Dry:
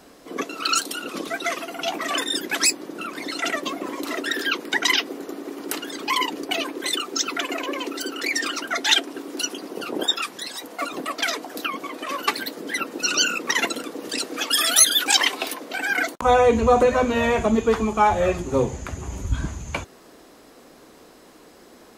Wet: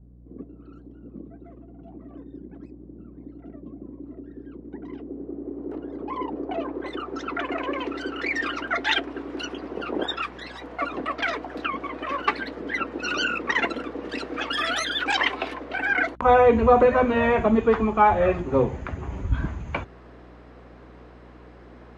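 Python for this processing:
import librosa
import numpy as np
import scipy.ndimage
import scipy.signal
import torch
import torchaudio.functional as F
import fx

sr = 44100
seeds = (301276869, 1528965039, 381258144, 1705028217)

y = fx.add_hum(x, sr, base_hz=60, snr_db=25)
y = fx.filter_sweep_lowpass(y, sr, from_hz=180.0, to_hz=2100.0, start_s=4.39, end_s=7.84, q=0.9)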